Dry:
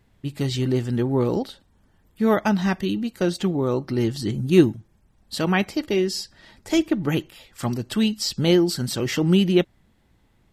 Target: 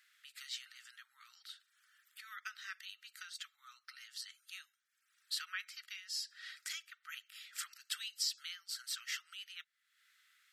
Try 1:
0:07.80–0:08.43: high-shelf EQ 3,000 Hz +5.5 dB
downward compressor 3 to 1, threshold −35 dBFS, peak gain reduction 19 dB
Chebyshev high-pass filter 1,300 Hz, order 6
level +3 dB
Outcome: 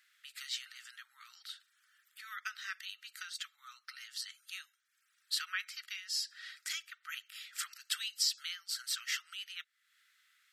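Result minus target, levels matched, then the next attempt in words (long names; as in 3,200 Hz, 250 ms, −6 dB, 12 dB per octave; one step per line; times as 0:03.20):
downward compressor: peak gain reduction −4.5 dB
0:07.80–0:08.43: high-shelf EQ 3,000 Hz +5.5 dB
downward compressor 3 to 1, threshold −42 dBFS, peak gain reduction 23.5 dB
Chebyshev high-pass filter 1,300 Hz, order 6
level +3 dB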